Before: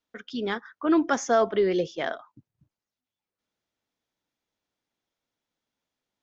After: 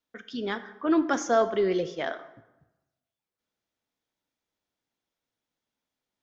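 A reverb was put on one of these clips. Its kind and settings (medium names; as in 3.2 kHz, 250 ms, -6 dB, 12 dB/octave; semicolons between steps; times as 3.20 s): plate-style reverb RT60 1 s, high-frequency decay 0.65×, DRR 11 dB; trim -2 dB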